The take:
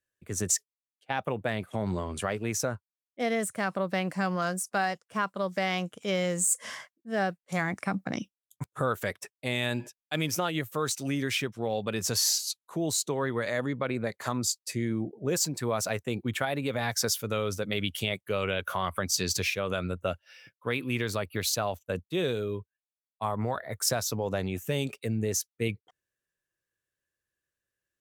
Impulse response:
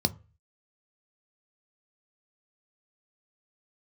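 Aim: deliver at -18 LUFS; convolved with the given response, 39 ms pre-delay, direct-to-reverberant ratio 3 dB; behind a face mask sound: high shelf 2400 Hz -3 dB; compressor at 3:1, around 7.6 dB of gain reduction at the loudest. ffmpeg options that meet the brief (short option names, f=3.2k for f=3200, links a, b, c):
-filter_complex "[0:a]acompressor=threshold=-33dB:ratio=3,asplit=2[a][b];[1:a]atrim=start_sample=2205,adelay=39[c];[b][c]afir=irnorm=-1:irlink=0,volume=-11dB[d];[a][d]amix=inputs=2:normalize=0,highshelf=f=2.4k:g=-3,volume=14dB"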